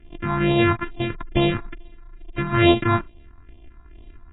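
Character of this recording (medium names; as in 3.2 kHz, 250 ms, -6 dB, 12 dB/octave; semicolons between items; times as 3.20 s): a buzz of ramps at a fixed pitch in blocks of 128 samples; phasing stages 4, 2.3 Hz, lowest notch 480–1500 Hz; AAC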